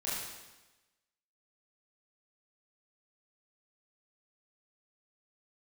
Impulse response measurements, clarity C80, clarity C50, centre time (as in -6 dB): 2.0 dB, -1.0 dB, 88 ms